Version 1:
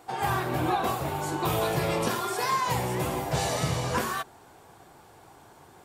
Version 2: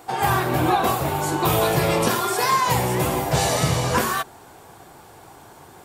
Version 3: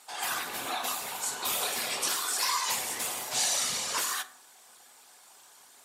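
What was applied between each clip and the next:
high shelf 10000 Hz +5 dB; gain +7 dB
whisperiser; band-pass 6900 Hz, Q 0.7; reverb RT60 0.55 s, pre-delay 4 ms, DRR 9 dB

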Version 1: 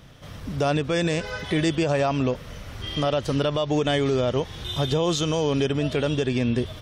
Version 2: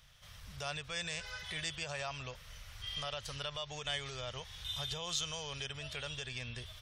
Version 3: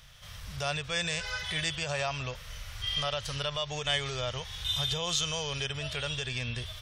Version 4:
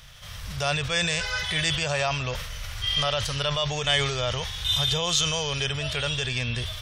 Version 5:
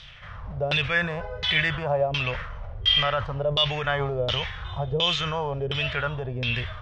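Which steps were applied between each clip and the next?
passive tone stack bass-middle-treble 10-0-10; gain -5.5 dB
harmonic-percussive split harmonic +5 dB; gain +5 dB
sustainer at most 44 dB/s; gain +6 dB
LFO low-pass saw down 1.4 Hz 400–3900 Hz

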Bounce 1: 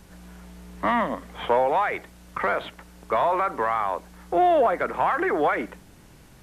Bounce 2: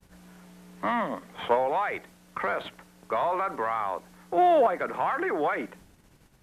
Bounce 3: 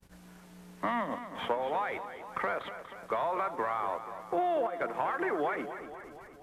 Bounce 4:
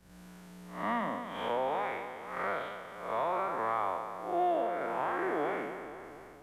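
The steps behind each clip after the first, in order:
expander -44 dBFS; notches 60/120 Hz; in parallel at -3 dB: level quantiser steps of 19 dB; on the sum: gain -5.5 dB
transient shaper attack +1 dB, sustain -6 dB; compressor, threshold -25 dBFS, peak gain reduction 8.5 dB; warbling echo 0.24 s, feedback 60%, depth 61 cents, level -11 dB; gain -2 dB
time blur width 0.167 s; gain +2.5 dB

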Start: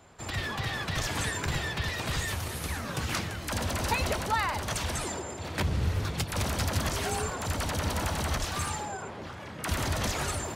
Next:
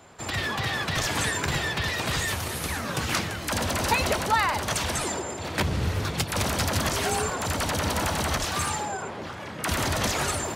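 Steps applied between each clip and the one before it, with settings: low shelf 81 Hz -10 dB; gain +5.5 dB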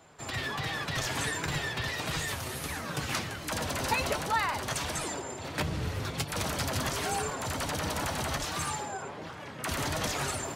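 flange 1.4 Hz, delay 6.1 ms, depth 1.9 ms, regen +56%; gain -1.5 dB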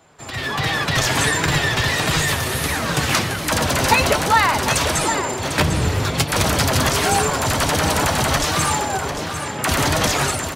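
AGC gain up to 10 dB; on a send: echo 0.749 s -9.5 dB; on the sum: gain +3.5 dB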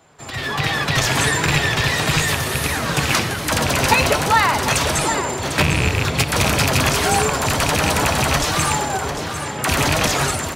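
rattling part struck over -19 dBFS, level -8 dBFS; on a send at -14 dB: reverb RT60 2.2 s, pre-delay 3 ms

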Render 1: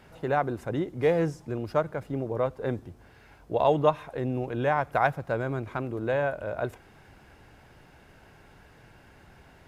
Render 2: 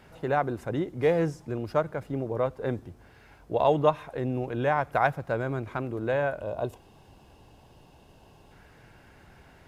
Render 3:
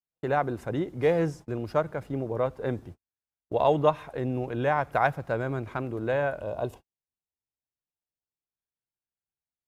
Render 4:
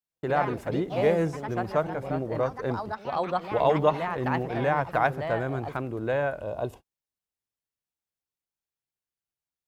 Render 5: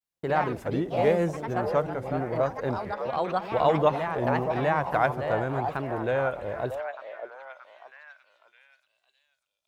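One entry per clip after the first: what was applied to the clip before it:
spectral gain 6.41–8.52, 1200–2500 Hz -11 dB
gate -42 dBFS, range -51 dB
echoes that change speed 96 ms, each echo +3 st, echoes 3, each echo -6 dB
delay with a stepping band-pass 0.612 s, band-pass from 660 Hz, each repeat 0.7 oct, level -6.5 dB; vibrato 0.91 Hz 95 cents

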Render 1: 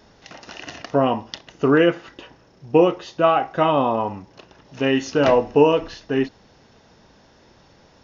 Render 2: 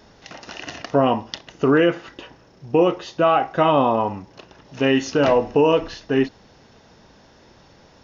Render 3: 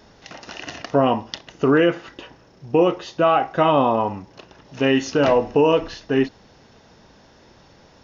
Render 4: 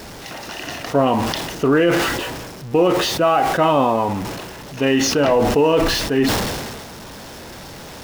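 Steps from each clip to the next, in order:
limiter -9 dBFS, peak gain reduction 6.5 dB; gain +2 dB
nothing audible
zero-crossing step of -31.5 dBFS; sustainer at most 33 dB/s

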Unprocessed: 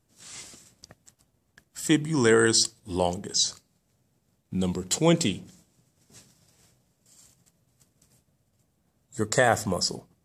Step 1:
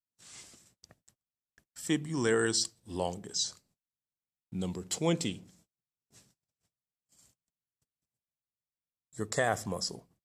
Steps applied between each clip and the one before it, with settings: gate -57 dBFS, range -30 dB; gain -8 dB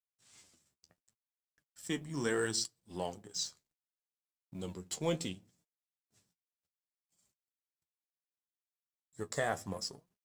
G.711 law mismatch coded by A; flange 0.69 Hz, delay 4.6 ms, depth 9.6 ms, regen +43%

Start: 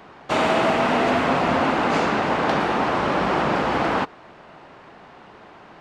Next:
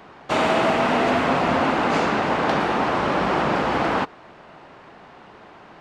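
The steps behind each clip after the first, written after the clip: nothing audible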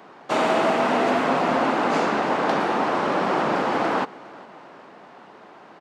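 HPF 200 Hz 12 dB/oct; bell 2700 Hz -3.5 dB 1.6 oct; feedback echo 0.406 s, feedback 54%, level -22.5 dB

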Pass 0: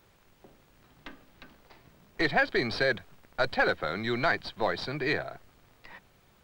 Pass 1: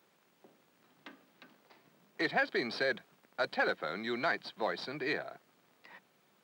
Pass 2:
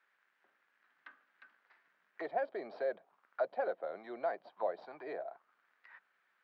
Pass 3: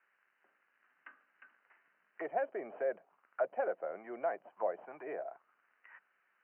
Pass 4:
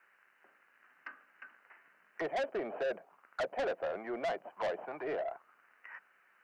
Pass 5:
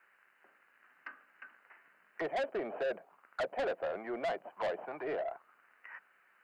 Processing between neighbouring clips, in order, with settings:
HPF 170 Hz 24 dB/oct; gain -5.5 dB
auto-wah 610–1700 Hz, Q 3.4, down, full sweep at -33 dBFS; gain +3 dB
Chebyshev low-pass 3000 Hz, order 10; gain +1 dB
soft clip -38.5 dBFS, distortion -6 dB; gain +8 dB
bell 5800 Hz -6.5 dB 0.23 oct

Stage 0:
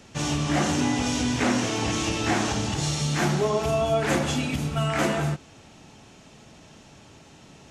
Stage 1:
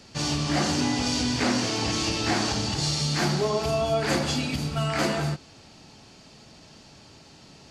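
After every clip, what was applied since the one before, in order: bell 4600 Hz +13.5 dB 0.28 oct; gain -1.5 dB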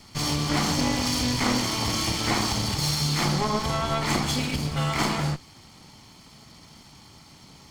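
minimum comb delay 0.94 ms; gain +2 dB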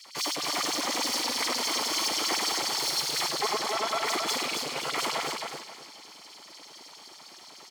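hard clip -28 dBFS, distortion -7 dB; LFO high-pass sine 9.8 Hz 370–5500 Hz; feedback echo 0.267 s, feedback 28%, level -4.5 dB

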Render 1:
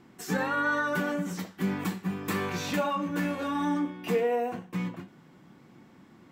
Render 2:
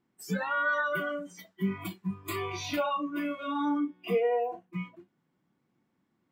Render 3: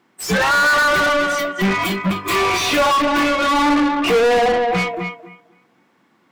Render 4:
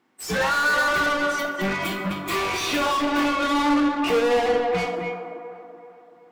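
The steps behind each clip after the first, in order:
spectral noise reduction 21 dB
tape echo 0.257 s, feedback 25%, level -9.5 dB, low-pass 5200 Hz; overdrive pedal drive 32 dB, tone 4000 Hz, clips at -17.5 dBFS; upward expander 1.5:1, over -45 dBFS; gain +9 dB
band-limited delay 0.382 s, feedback 44%, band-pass 610 Hz, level -7 dB; two-slope reverb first 0.67 s, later 2.6 s, from -27 dB, DRR 5.5 dB; gain -7.5 dB

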